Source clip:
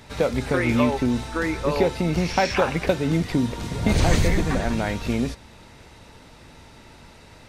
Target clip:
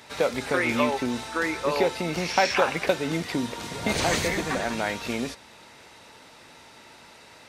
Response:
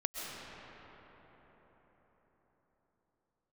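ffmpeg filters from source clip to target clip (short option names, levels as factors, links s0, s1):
-af "highpass=f=560:p=1,volume=1.19"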